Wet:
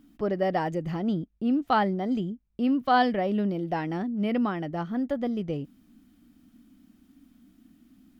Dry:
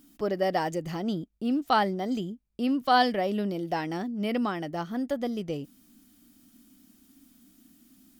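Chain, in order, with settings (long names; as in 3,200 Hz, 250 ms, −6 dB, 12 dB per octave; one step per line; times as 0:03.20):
bass and treble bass +5 dB, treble −13 dB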